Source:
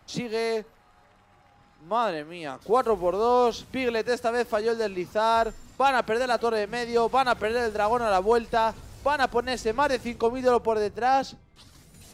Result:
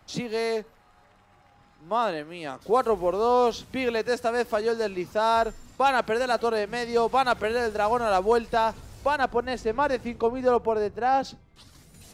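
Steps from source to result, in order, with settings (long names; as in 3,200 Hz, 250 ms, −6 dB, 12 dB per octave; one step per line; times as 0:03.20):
0:09.16–0:11.25: high-shelf EQ 3,200 Hz −9.5 dB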